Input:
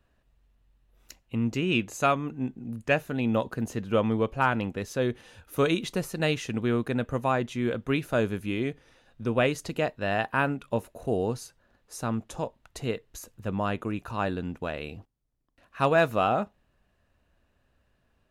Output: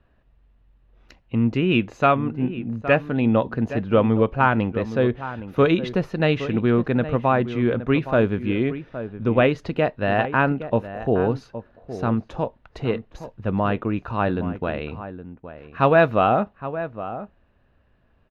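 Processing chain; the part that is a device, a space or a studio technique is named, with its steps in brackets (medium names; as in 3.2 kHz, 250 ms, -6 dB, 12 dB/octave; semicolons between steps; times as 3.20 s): shout across a valley (distance through air 290 m; echo from a far wall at 140 m, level -12 dB); trim +7.5 dB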